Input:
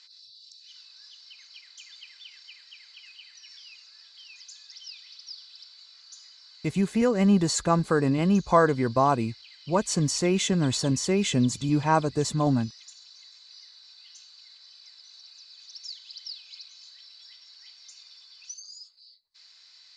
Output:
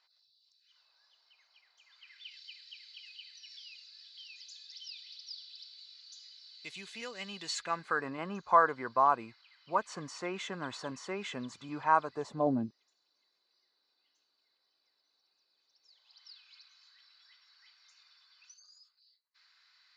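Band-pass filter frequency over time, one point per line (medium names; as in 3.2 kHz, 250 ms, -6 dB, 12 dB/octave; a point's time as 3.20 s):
band-pass filter, Q 1.7
1.82 s 730 Hz
2.37 s 3.5 kHz
7.36 s 3.5 kHz
8.11 s 1.2 kHz
12.11 s 1.2 kHz
12.65 s 330 Hz
15.80 s 330 Hz
16.30 s 1.4 kHz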